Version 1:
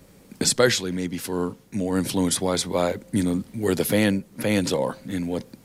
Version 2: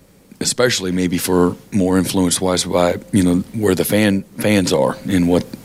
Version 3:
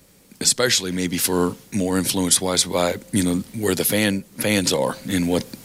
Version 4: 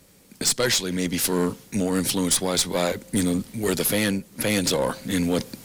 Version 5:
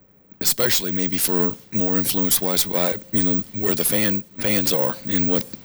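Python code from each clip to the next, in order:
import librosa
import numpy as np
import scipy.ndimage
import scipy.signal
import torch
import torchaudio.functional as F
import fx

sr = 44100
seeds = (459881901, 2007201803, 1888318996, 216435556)

y1 = fx.rider(x, sr, range_db=10, speed_s=0.5)
y1 = F.gain(torch.from_numpy(y1), 7.5).numpy()
y2 = fx.high_shelf(y1, sr, hz=2100.0, db=9.0)
y2 = F.gain(torch.from_numpy(y2), -6.5).numpy()
y3 = fx.tube_stage(y2, sr, drive_db=14.0, bias=0.4)
y4 = fx.env_lowpass(y3, sr, base_hz=1500.0, full_db=-22.0)
y4 = (np.kron(y4[::2], np.eye(2)[0]) * 2)[:len(y4)]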